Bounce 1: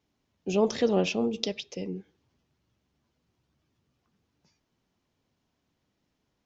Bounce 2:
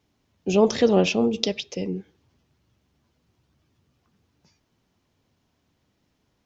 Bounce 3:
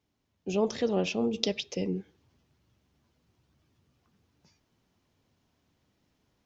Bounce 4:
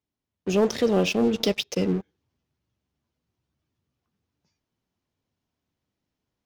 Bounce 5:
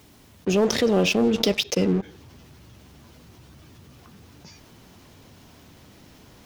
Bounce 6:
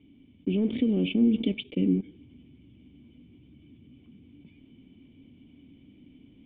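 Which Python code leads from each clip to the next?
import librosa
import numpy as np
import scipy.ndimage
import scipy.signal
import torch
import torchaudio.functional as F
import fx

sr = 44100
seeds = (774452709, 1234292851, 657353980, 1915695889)

y1 = fx.peak_eq(x, sr, hz=89.0, db=4.0, octaves=0.77)
y1 = y1 * 10.0 ** (6.0 / 20.0)
y2 = fx.rider(y1, sr, range_db=4, speed_s=0.5)
y2 = y2 * 10.0 ** (-6.5 / 20.0)
y3 = fx.leveller(y2, sr, passes=3)
y3 = y3 * 10.0 ** (-4.0 / 20.0)
y4 = fx.env_flatten(y3, sr, amount_pct=50)
y5 = fx.formant_cascade(y4, sr, vowel='i')
y5 = y5 * 10.0 ** (4.5 / 20.0)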